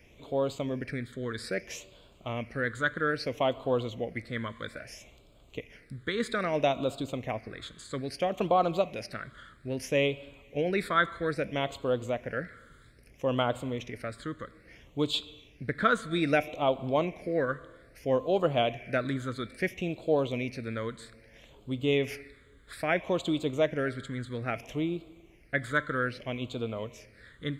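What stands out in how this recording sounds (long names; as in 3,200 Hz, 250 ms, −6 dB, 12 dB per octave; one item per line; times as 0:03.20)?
phaser sweep stages 8, 0.61 Hz, lowest notch 750–1,800 Hz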